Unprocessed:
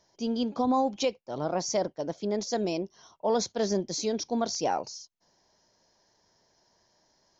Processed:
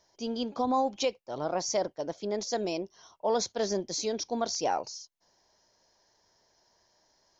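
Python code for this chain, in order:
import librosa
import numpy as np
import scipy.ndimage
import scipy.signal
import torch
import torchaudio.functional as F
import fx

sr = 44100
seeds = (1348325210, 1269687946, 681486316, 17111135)

y = fx.peak_eq(x, sr, hz=180.0, db=-6.0, octaves=1.7)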